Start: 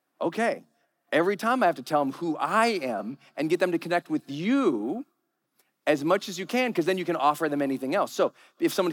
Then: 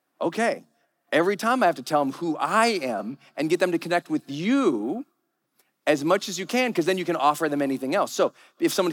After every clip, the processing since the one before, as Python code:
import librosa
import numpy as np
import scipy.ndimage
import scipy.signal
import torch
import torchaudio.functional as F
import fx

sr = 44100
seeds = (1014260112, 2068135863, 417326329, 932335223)

y = fx.dynamic_eq(x, sr, hz=6900.0, q=0.88, threshold_db=-51.0, ratio=4.0, max_db=5)
y = y * 10.0 ** (2.0 / 20.0)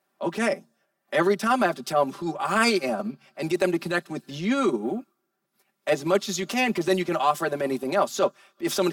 y = x + 0.82 * np.pad(x, (int(5.1 * sr / 1000.0), 0))[:len(x)]
y = fx.transient(y, sr, attack_db=-8, sustain_db=-4)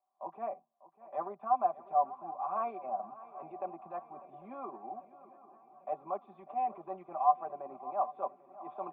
y = fx.formant_cascade(x, sr, vowel='a')
y = fx.echo_swing(y, sr, ms=795, ratio=3, feedback_pct=60, wet_db=-17.5)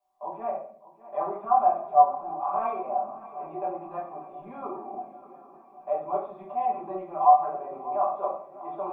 y = fx.room_shoebox(x, sr, seeds[0], volume_m3=69.0, walls='mixed', distance_m=1.3)
y = y * 10.0 ** (1.5 / 20.0)